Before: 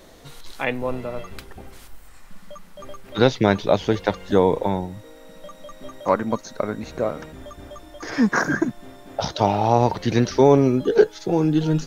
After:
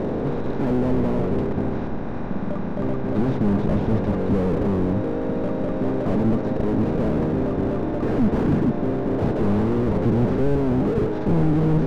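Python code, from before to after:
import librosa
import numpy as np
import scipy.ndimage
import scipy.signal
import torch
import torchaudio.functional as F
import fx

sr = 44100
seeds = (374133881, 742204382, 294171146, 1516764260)

y = fx.bin_compress(x, sr, power=0.4)
y = fx.peak_eq(y, sr, hz=450.0, db=-5.5, octaves=0.6, at=(1.5, 4.19))
y = scipy.signal.sosfilt(scipy.signal.butter(2, 3000.0, 'lowpass', fs=sr, output='sos'), y)
y = fx.tilt_shelf(y, sr, db=9.5, hz=860.0)
y = fx.slew_limit(y, sr, full_power_hz=85.0)
y = y * 10.0 ** (-7.0 / 20.0)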